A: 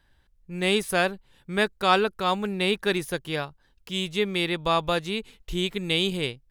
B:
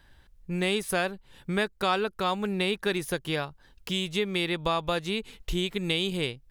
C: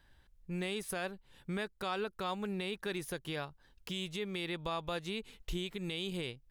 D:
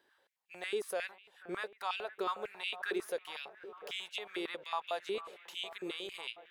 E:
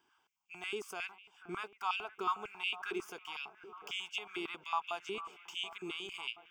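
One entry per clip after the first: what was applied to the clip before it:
downward compressor 2.5 to 1, threshold −35 dBFS, peak gain reduction 13.5 dB; level +6.5 dB
brickwall limiter −18.5 dBFS, peak gain reduction 7.5 dB; level −7.5 dB
delay with a low-pass on its return 486 ms, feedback 75%, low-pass 1,700 Hz, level −14 dB; high-pass on a step sequencer 11 Hz 390–2,700 Hz; level −4 dB
phaser with its sweep stopped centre 2,700 Hz, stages 8; level +3.5 dB

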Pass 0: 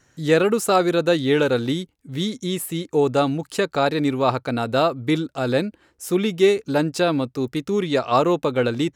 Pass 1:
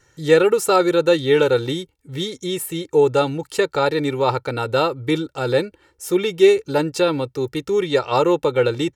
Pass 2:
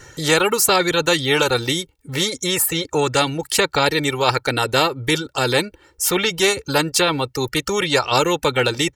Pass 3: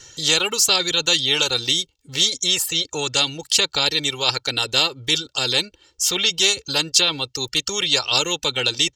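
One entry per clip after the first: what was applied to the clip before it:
comb filter 2.2 ms, depth 70%
reverb reduction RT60 0.98 s; every bin compressed towards the loudest bin 2 to 1
flat-topped bell 4,500 Hz +13.5 dB; level −8.5 dB

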